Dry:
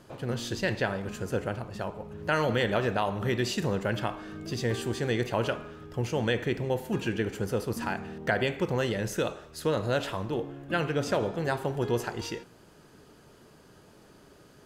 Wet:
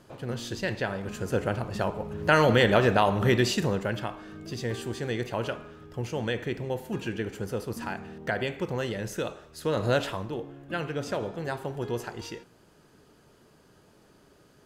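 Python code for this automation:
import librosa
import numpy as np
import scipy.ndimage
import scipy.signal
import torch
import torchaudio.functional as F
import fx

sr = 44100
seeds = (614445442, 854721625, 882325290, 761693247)

y = fx.gain(x, sr, db=fx.line((0.84, -1.5), (1.74, 6.0), (3.33, 6.0), (4.06, -2.5), (9.61, -2.5), (9.89, 4.0), (10.37, -3.5)))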